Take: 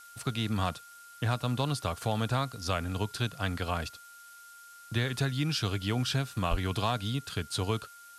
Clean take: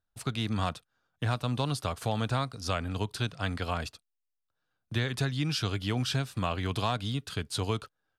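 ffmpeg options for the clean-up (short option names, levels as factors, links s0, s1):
-filter_complex "[0:a]bandreject=f=1400:w=30,asplit=3[s0][s1][s2];[s0]afade=t=out:st=6.5:d=0.02[s3];[s1]highpass=f=140:w=0.5412,highpass=f=140:w=1.3066,afade=t=in:st=6.5:d=0.02,afade=t=out:st=6.62:d=0.02[s4];[s2]afade=t=in:st=6.62:d=0.02[s5];[s3][s4][s5]amix=inputs=3:normalize=0,afftdn=nr=30:nf=-52"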